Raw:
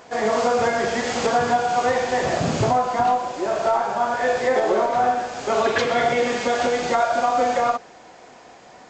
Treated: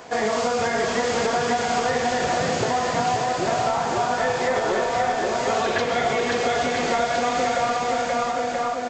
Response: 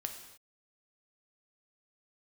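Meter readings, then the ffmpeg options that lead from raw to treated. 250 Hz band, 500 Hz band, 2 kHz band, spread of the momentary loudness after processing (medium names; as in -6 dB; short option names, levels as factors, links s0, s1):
-0.5 dB, -1.5 dB, +0.5 dB, 1 LU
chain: -filter_complex "[0:a]aecho=1:1:530|980.5|1363|1689|1966:0.631|0.398|0.251|0.158|0.1,acrossover=split=190|1900[s0][s1][s2];[s0]acompressor=threshold=0.01:ratio=4[s3];[s1]acompressor=threshold=0.0501:ratio=4[s4];[s2]acompressor=threshold=0.02:ratio=4[s5];[s3][s4][s5]amix=inputs=3:normalize=0,volume=1.58"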